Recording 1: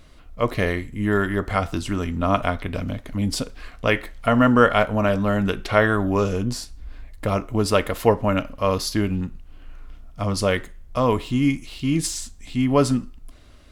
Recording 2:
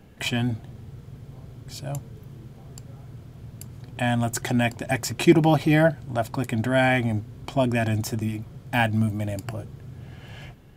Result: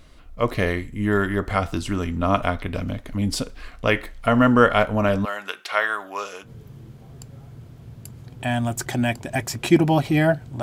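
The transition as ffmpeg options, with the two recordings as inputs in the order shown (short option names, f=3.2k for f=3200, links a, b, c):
-filter_complex "[0:a]asettb=1/sr,asplit=3[a][b][c];[a]atrim=end=5.254[d];[b]atrim=start=5.25:end=6.5,asetpts=PTS-STARTPTS,afade=t=in:d=0.004:c=qsin,afade=t=out:st=1.246:d=0.004:c=qsin,highpass=920[e];[c]atrim=start=6.496[f];[d][e]acrossfade=d=0.004:c1=hsin:c2=qsin[g];[g][f]acrossfade=d=0.004:c1=qsin:c2=hsin,apad=whole_dur=10.62,atrim=end=10.62,atrim=end=6.5,asetpts=PTS-STARTPTS[h];[1:a]atrim=start=1.98:end=6.18,asetpts=PTS-STARTPTS[i];[h][i]acrossfade=d=0.08:c1=tri:c2=tri"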